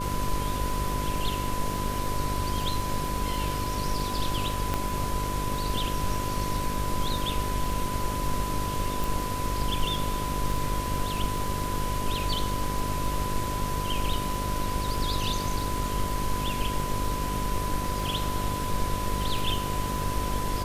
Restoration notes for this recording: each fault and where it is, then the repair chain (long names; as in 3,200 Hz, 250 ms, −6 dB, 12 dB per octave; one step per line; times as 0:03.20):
mains buzz 50 Hz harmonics 12 −33 dBFS
surface crackle 22 per second −32 dBFS
whistle 1,000 Hz −32 dBFS
0:04.74: click −13 dBFS
0:09.04: click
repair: click removal
hum removal 50 Hz, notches 12
notch filter 1,000 Hz, Q 30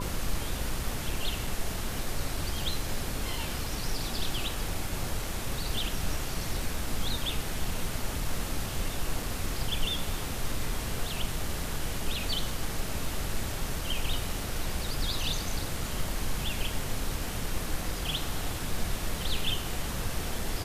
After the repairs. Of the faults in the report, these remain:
0:04.74: click